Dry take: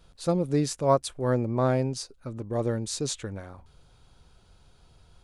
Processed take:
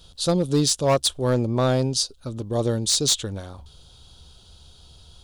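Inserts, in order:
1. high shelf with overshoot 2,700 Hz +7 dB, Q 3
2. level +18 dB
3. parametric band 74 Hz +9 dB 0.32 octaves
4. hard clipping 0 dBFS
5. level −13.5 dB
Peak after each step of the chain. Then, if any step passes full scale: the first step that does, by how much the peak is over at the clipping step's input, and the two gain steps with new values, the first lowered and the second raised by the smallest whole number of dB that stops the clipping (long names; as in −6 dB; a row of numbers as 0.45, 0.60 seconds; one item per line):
−8.5, +9.5, +9.5, 0.0, −13.5 dBFS
step 2, 9.5 dB
step 2 +8 dB, step 5 −3.5 dB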